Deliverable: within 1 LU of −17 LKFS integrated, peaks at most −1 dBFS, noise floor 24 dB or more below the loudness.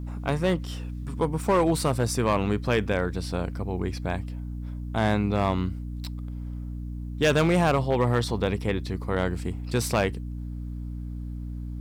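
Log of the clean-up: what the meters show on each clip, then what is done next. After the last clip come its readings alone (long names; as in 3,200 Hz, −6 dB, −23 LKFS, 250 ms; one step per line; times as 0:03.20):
share of clipped samples 0.9%; peaks flattened at −15.5 dBFS; mains hum 60 Hz; hum harmonics up to 300 Hz; level of the hum −31 dBFS; integrated loudness −27.5 LKFS; sample peak −15.5 dBFS; target loudness −17.0 LKFS
→ clipped peaks rebuilt −15.5 dBFS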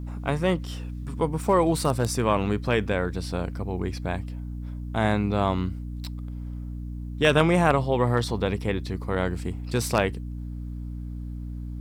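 share of clipped samples 0.0%; mains hum 60 Hz; hum harmonics up to 300 Hz; level of the hum −31 dBFS
→ mains-hum notches 60/120/180/240/300 Hz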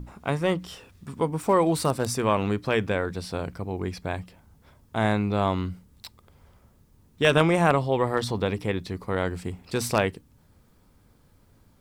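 mains hum none found; integrated loudness −26.0 LKFS; sample peak −6.0 dBFS; target loudness −17.0 LKFS
→ level +9 dB
brickwall limiter −1 dBFS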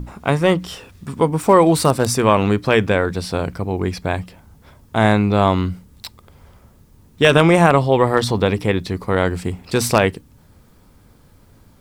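integrated loudness −17.5 LKFS; sample peak −1.0 dBFS; background noise floor −51 dBFS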